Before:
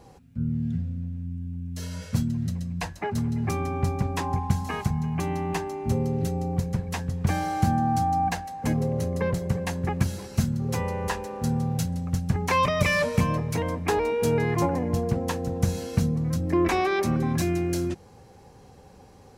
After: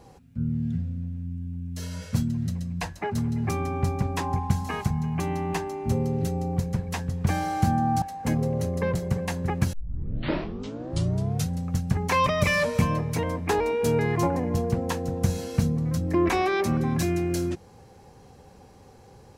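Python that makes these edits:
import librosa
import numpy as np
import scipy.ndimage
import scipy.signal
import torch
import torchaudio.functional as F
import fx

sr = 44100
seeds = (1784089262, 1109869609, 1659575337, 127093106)

y = fx.edit(x, sr, fx.cut(start_s=8.02, length_s=0.39),
    fx.tape_start(start_s=10.12, length_s=1.78), tone=tone)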